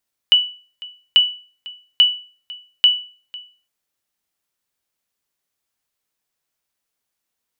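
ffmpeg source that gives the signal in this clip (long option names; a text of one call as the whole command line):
ffmpeg -f lavfi -i "aevalsrc='0.596*(sin(2*PI*2960*mod(t,0.84))*exp(-6.91*mod(t,0.84)/0.39)+0.0841*sin(2*PI*2960*max(mod(t,0.84)-0.5,0))*exp(-6.91*max(mod(t,0.84)-0.5,0)/0.39))':duration=3.36:sample_rate=44100" out.wav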